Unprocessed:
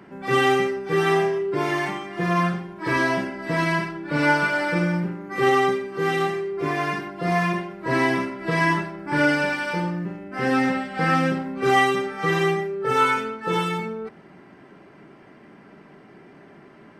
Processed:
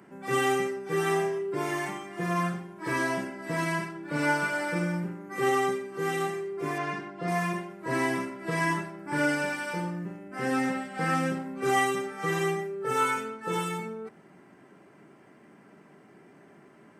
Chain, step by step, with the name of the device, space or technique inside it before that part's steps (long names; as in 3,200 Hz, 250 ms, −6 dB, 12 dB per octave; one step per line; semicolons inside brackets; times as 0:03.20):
budget condenser microphone (high-pass filter 93 Hz; high shelf with overshoot 5,900 Hz +8 dB, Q 1.5)
0:06.78–0:07.28: low-pass filter 4,900 Hz 12 dB per octave
level −6.5 dB